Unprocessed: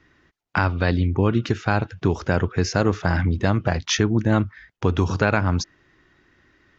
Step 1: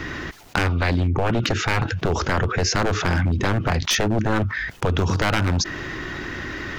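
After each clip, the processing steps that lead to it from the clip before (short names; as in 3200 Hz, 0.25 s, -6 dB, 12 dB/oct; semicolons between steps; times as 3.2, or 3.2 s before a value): one-sided fold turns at -16.5 dBFS; fast leveller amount 70%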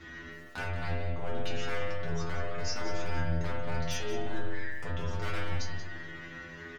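metallic resonator 82 Hz, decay 0.62 s, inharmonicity 0.002; outdoor echo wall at 31 m, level -9 dB; spring tank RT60 1.3 s, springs 43 ms, chirp 55 ms, DRR 1 dB; gain -5 dB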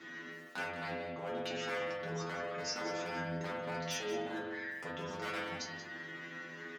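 HPF 170 Hz 24 dB/oct; gain -1.5 dB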